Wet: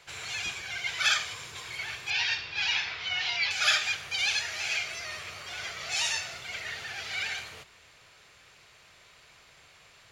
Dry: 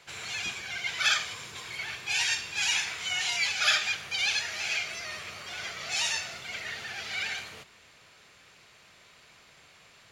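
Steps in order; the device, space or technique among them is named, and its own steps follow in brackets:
0:02.10–0:03.51: Butterworth low-pass 5,100 Hz 36 dB per octave
low shelf boost with a cut just above (low-shelf EQ 94 Hz +5 dB; parametric band 220 Hz −6 dB 1 octave)

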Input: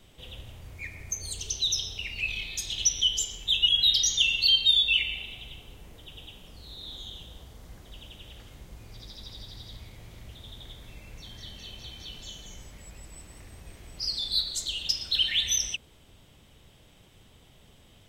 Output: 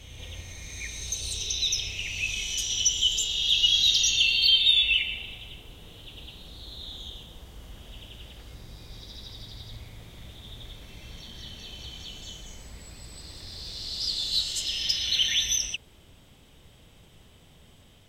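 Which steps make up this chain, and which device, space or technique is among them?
reverse reverb (reversed playback; convolution reverb RT60 3.1 s, pre-delay 47 ms, DRR 4 dB; reversed playback)

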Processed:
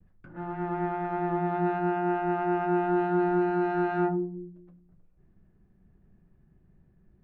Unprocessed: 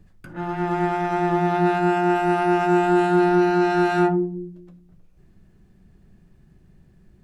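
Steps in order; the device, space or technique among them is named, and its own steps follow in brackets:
hearing-loss simulation (low-pass filter 1,800 Hz 12 dB per octave; downward expander −52 dBFS)
level −7.5 dB

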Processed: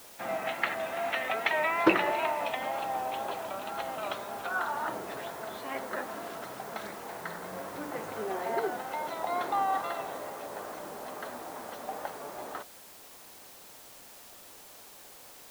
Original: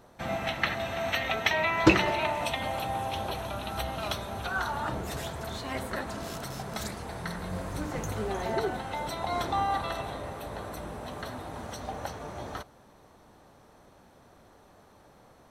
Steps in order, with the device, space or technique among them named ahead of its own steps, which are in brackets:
wax cylinder (band-pass filter 330–2,400 Hz; tape wow and flutter; white noise bed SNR 17 dB)

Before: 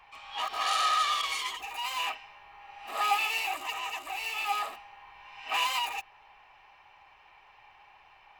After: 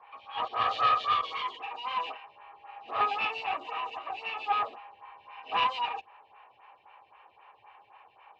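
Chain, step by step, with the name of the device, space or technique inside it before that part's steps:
vibe pedal into a guitar amplifier (phaser with staggered stages 3.8 Hz; tube saturation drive 21 dB, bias 0.6; loudspeaker in its box 94–3,600 Hz, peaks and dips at 100 Hz +4 dB, 160 Hz −7 dB, 490 Hz +8 dB, 1,100 Hz +4 dB, 2,000 Hz −5 dB)
level +5.5 dB

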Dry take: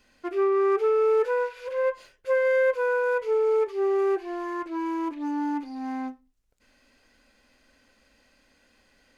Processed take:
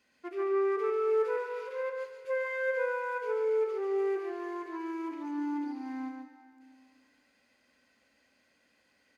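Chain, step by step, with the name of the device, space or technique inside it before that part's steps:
PA in a hall (high-pass filter 110 Hz 12 dB per octave; parametric band 2,100 Hz +4 dB 0.41 octaves; single-tap delay 141 ms −5 dB; convolution reverb RT60 2.2 s, pre-delay 80 ms, DRR 10 dB)
level −9 dB

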